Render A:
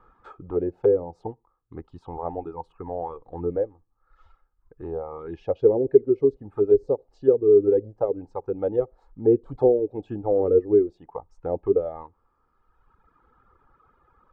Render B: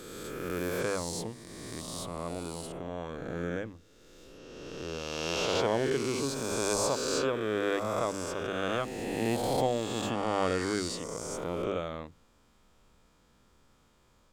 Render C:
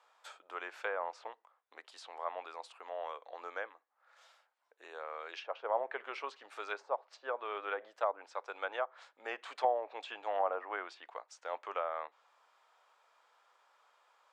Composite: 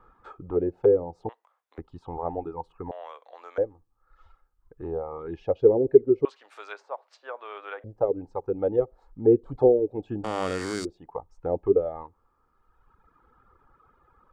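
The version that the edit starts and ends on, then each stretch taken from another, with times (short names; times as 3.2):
A
1.29–1.78 from C
2.91–3.58 from C
6.25–7.84 from C
10.24–10.85 from B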